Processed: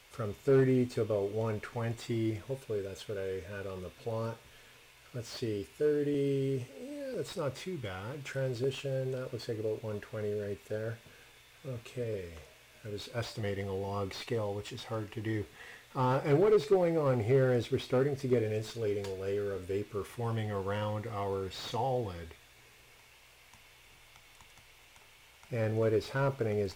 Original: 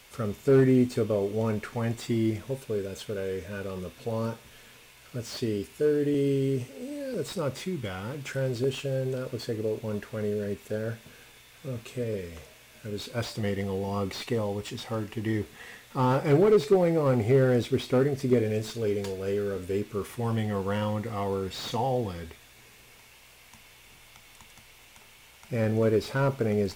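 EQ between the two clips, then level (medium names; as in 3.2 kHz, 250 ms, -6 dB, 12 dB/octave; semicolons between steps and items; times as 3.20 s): peaking EQ 210 Hz -7 dB 0.65 oct; treble shelf 6.7 kHz -5 dB; -4.0 dB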